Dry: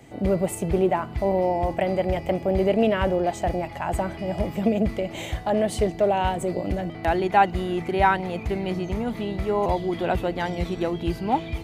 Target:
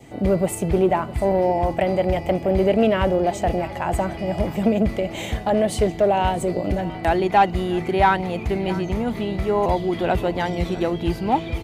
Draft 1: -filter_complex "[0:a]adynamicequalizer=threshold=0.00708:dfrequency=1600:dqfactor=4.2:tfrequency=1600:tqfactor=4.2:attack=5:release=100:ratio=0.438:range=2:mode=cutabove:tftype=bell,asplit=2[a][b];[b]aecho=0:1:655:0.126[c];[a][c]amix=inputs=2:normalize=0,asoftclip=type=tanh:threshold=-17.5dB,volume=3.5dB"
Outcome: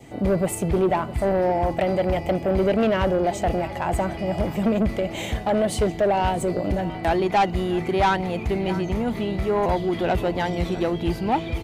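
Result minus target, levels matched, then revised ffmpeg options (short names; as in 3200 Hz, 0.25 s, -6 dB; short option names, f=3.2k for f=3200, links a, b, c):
soft clip: distortion +11 dB
-filter_complex "[0:a]adynamicequalizer=threshold=0.00708:dfrequency=1600:dqfactor=4.2:tfrequency=1600:tqfactor=4.2:attack=5:release=100:ratio=0.438:range=2:mode=cutabove:tftype=bell,asplit=2[a][b];[b]aecho=0:1:655:0.126[c];[a][c]amix=inputs=2:normalize=0,asoftclip=type=tanh:threshold=-9dB,volume=3.5dB"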